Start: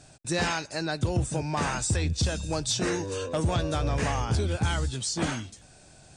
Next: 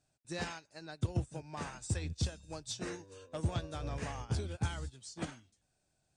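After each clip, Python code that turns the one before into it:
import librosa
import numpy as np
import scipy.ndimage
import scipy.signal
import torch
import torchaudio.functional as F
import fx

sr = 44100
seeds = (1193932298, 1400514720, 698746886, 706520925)

y = fx.upward_expand(x, sr, threshold_db=-35.0, expansion=2.5)
y = F.gain(torch.from_numpy(y), -5.0).numpy()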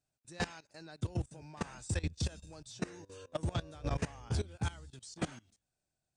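y = fx.level_steps(x, sr, step_db=19)
y = F.gain(torch.from_numpy(y), 7.0).numpy()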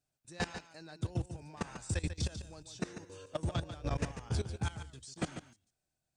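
y = x + 10.0 ** (-10.0 / 20.0) * np.pad(x, (int(144 * sr / 1000.0), 0))[:len(x)]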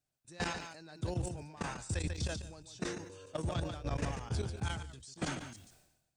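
y = fx.sustainer(x, sr, db_per_s=59.0)
y = F.gain(torch.from_numpy(y), -2.0).numpy()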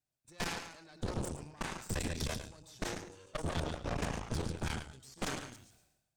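y = x + 10.0 ** (-9.5 / 20.0) * np.pad(x, (int(107 * sr / 1000.0), 0))[:len(x)]
y = fx.cheby_harmonics(y, sr, harmonics=(6,), levels_db=(-8,), full_scale_db=-22.5)
y = F.gain(torch.from_numpy(y), -4.0).numpy()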